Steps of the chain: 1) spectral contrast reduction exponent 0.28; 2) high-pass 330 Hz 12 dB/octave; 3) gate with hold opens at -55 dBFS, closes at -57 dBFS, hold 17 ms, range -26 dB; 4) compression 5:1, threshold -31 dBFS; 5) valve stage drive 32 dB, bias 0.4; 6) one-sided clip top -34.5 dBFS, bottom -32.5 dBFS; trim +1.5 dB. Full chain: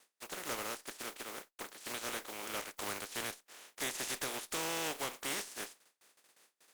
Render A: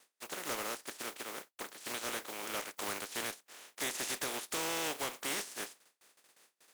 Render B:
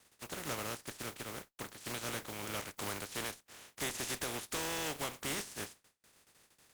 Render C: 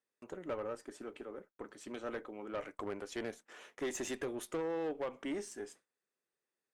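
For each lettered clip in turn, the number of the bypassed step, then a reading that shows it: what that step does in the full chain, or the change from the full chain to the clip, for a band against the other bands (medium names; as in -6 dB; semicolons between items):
5, 125 Hz band -2.5 dB; 2, 125 Hz band +9.0 dB; 1, 250 Hz band +11.5 dB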